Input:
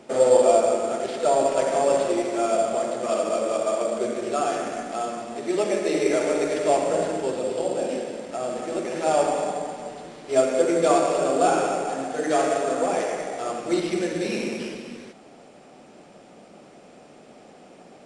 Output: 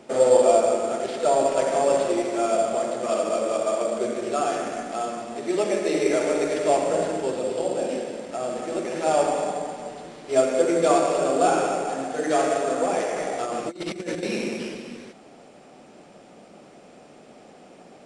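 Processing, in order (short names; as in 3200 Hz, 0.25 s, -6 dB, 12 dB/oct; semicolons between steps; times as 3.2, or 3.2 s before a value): 13.16–14.23 negative-ratio compressor -29 dBFS, ratio -0.5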